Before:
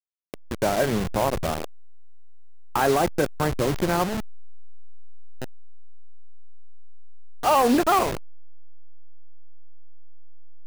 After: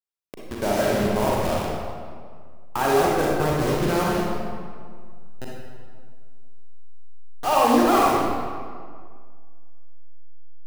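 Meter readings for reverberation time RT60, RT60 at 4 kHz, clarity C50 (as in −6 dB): 1.9 s, 1.3 s, −2.5 dB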